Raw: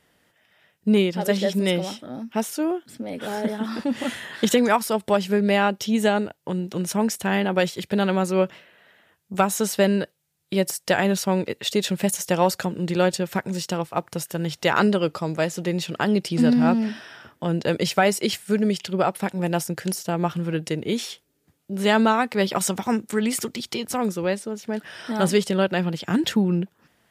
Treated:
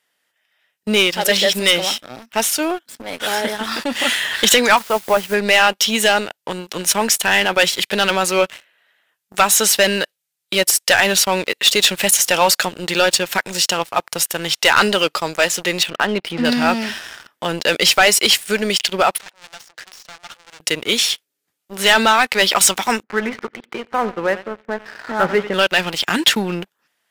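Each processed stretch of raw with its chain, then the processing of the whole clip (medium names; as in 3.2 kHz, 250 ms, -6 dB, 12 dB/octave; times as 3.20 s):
4.77–5.34 s: low-pass 1.5 kHz + hum notches 50/100/150 Hz + word length cut 8-bit, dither triangular
15.83–16.45 s: upward compressor, threshold -25 dBFS + distance through air 390 m
19.18–20.60 s: valve stage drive 37 dB, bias 0.3 + band-pass 480–4700 Hz
23.03–25.54 s: low-pass 1.8 kHz 24 dB/octave + feedback delay 90 ms, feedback 43%, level -14.5 dB
whole clip: high-pass 1.5 kHz 6 dB/octave; dynamic bell 2.9 kHz, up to +4 dB, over -44 dBFS, Q 1.1; waveshaping leveller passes 3; trim +3.5 dB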